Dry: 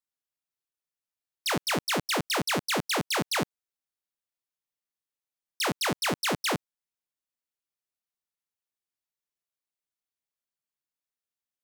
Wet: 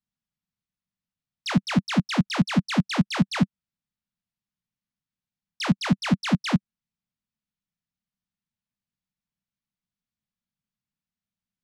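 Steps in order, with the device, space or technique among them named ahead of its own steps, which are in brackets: jukebox (LPF 5300 Hz 12 dB/oct; resonant low shelf 280 Hz +12 dB, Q 3; compressor, threshold -16 dBFS, peak gain reduction 6 dB)

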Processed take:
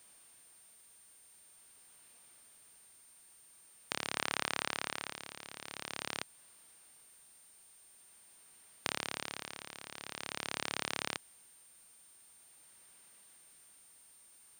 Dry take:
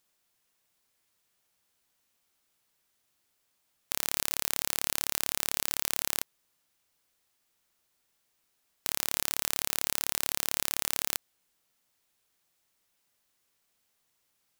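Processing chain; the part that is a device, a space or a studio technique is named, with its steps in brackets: medium wave at night (BPF 100–3700 Hz; compressor 4:1, threshold -42 dBFS, peak gain reduction 10 dB; tremolo 0.46 Hz, depth 75%; whine 9000 Hz -70 dBFS; white noise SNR 20 dB); 4.16–5.12 bell 1300 Hz +4 dB 1.9 oct; gain +10.5 dB

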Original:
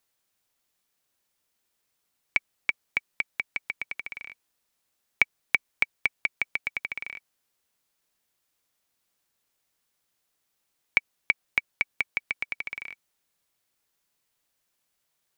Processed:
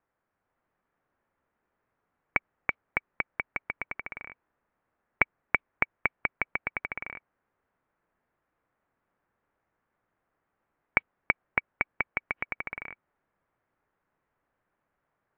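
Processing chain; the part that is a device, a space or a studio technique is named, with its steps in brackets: action camera in a waterproof case (LPF 1700 Hz 24 dB/oct; AGC gain up to 3 dB; gain +4.5 dB; AAC 96 kbps 24000 Hz)

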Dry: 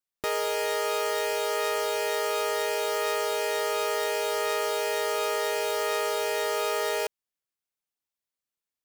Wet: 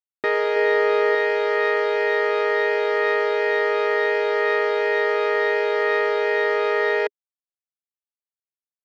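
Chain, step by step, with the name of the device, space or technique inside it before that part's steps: blown loudspeaker (crossover distortion -49 dBFS; speaker cabinet 180–3600 Hz, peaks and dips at 280 Hz +4 dB, 410 Hz +6 dB, 1900 Hz +10 dB, 2900 Hz -7 dB); 0.56–1.15 low shelf 350 Hz +7.5 dB; gain +4.5 dB

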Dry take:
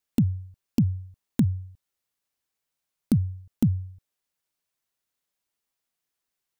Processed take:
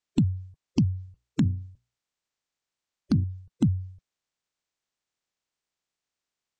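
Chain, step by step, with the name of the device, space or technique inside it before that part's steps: clip after many re-uploads (LPF 7200 Hz 24 dB/oct; bin magnitudes rounded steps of 30 dB); 1.06–3.24 notches 60/120/180/240/300/360/420/480 Hz

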